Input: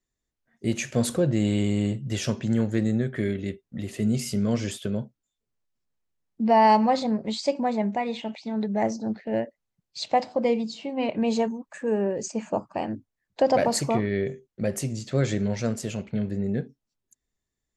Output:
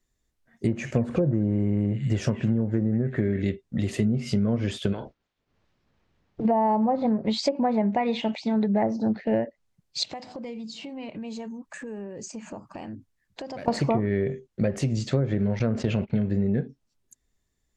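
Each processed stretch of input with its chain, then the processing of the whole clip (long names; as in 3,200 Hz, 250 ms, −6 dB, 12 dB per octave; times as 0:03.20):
0:00.67–0:03.42: parametric band 3,600 Hz −11.5 dB 1.4 octaves + echo through a band-pass that steps 185 ms, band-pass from 2,200 Hz, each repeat 0.7 octaves, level −4 dB
0:04.92–0:06.44: ceiling on every frequency bin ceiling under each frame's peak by 25 dB + downward compressor 4 to 1, threshold −35 dBFS + high-frequency loss of the air 200 metres
0:10.03–0:13.68: parametric band 600 Hz −5 dB 1.4 octaves + downward compressor 5 to 1, threshold −42 dBFS
0:15.59–0:16.10: noise gate −38 dBFS, range −57 dB + high-frequency loss of the air 93 metres + envelope flattener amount 50%
whole clip: treble cut that deepens with the level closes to 860 Hz, closed at −18 dBFS; low-shelf EQ 110 Hz +5 dB; downward compressor, threshold −26 dBFS; level +6 dB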